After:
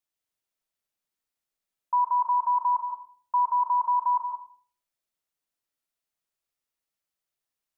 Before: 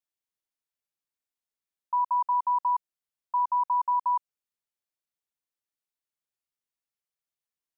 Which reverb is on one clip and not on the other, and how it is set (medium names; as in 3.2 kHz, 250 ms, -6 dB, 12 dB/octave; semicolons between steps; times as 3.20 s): algorithmic reverb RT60 0.53 s, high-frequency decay 0.3×, pre-delay 100 ms, DRR 3 dB; trim +2.5 dB